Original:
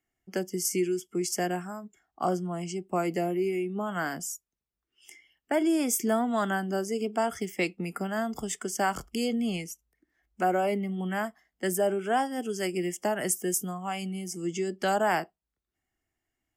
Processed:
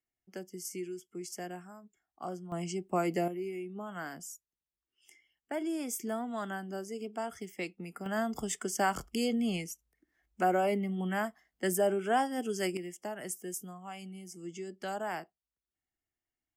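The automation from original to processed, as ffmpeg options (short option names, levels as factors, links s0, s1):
-af "asetnsamples=n=441:p=0,asendcmd='2.52 volume volume -2dB;3.28 volume volume -9.5dB;8.06 volume volume -2dB;12.77 volume volume -11dB',volume=0.251"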